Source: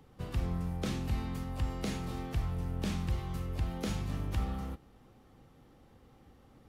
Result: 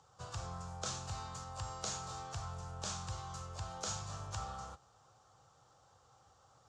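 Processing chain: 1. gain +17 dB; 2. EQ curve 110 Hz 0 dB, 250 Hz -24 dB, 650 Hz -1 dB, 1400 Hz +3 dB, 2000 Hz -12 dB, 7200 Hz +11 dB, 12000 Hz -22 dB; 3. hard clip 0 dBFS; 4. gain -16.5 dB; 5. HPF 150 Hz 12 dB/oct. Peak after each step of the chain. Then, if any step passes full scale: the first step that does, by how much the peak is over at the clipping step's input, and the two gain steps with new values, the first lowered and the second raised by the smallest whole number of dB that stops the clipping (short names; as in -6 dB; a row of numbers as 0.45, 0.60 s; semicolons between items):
-4.5, -4.0, -4.0, -20.5, -24.0 dBFS; no overload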